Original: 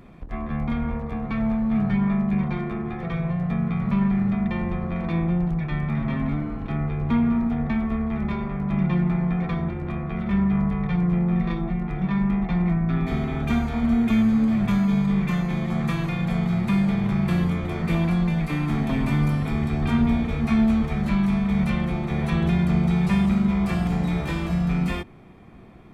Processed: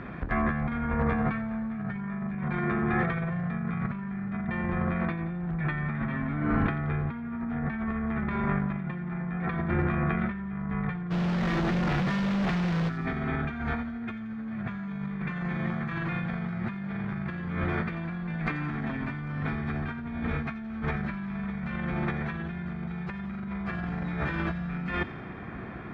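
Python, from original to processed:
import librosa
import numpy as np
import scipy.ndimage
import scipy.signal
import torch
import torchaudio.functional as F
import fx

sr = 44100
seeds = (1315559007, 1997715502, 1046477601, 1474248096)

y = scipy.signal.sosfilt(scipy.signal.butter(2, 54.0, 'highpass', fs=sr, output='sos'), x)
y = fx.peak_eq(y, sr, hz=1600.0, db=13.0, octaves=0.72)
y = fx.over_compress(y, sr, threshold_db=-31.0, ratio=-1.0)
y = fx.quant_companded(y, sr, bits=2, at=(11.1, 12.88), fade=0.02)
y = fx.air_absorb(y, sr, metres=210.0)
y = fx.echo_wet_highpass(y, sr, ms=87, feedback_pct=62, hz=3600.0, wet_db=-10.0)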